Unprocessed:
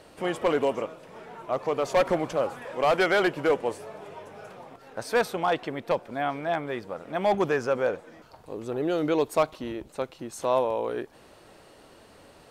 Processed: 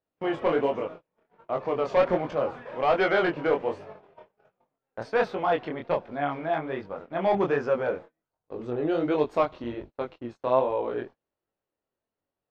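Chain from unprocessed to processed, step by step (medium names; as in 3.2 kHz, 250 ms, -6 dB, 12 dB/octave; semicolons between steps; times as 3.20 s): distance through air 220 m; gate -40 dBFS, range -36 dB; chorus 1.3 Hz, delay 20 ms, depth 6.1 ms; trim +3.5 dB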